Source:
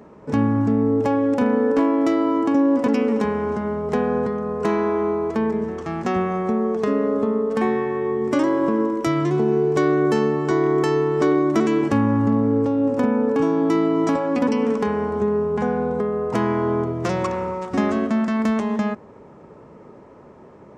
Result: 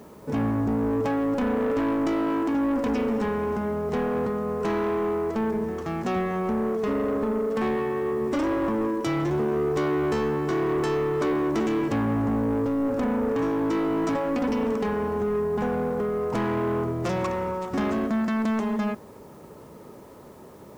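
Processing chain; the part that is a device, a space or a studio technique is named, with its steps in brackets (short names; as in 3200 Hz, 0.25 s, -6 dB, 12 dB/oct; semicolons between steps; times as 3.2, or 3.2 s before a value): open-reel tape (soft clip -20 dBFS, distortion -11 dB; bell 66 Hz +3 dB; white noise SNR 36 dB); gain -1 dB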